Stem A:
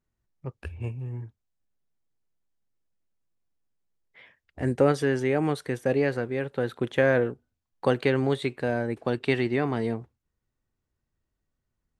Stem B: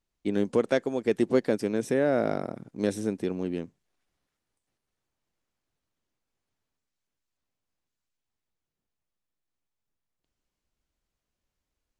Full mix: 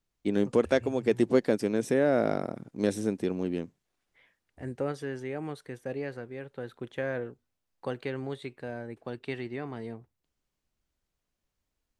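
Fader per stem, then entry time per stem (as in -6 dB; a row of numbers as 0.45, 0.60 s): -11.0, 0.0 dB; 0.00, 0.00 s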